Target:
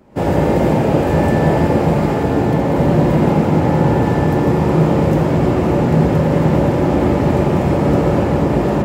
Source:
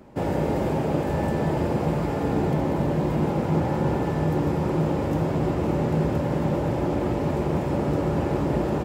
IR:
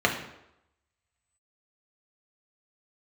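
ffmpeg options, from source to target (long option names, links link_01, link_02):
-filter_complex "[0:a]dynaudnorm=framelen=100:gausssize=3:maxgain=11.5dB,asplit=2[link_01][link_02];[1:a]atrim=start_sample=2205,adelay=82[link_03];[link_02][link_03]afir=irnorm=-1:irlink=0,volume=-19dB[link_04];[link_01][link_04]amix=inputs=2:normalize=0,volume=-1.5dB"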